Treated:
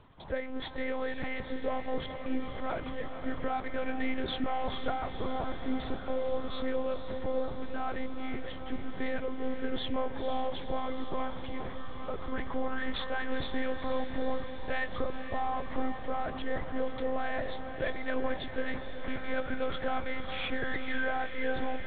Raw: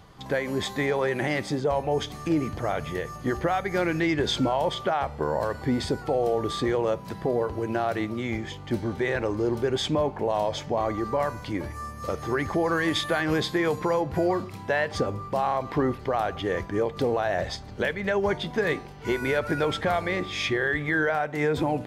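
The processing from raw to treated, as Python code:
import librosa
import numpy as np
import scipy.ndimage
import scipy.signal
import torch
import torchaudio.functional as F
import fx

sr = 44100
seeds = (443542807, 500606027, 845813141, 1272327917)

y = fx.self_delay(x, sr, depth_ms=0.064)
y = fx.lpc_monotone(y, sr, seeds[0], pitch_hz=260.0, order=8)
y = fx.echo_diffused(y, sr, ms=480, feedback_pct=73, wet_db=-9.0)
y = y * 10.0 ** (-7.0 / 20.0)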